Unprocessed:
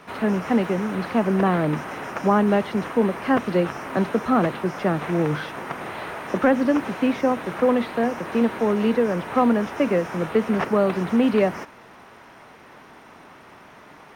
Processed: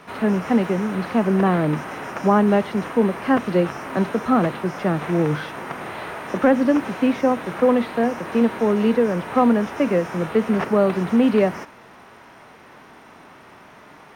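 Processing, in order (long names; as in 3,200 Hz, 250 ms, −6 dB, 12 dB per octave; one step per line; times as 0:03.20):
harmonic and percussive parts rebalanced percussive −4 dB
level +2.5 dB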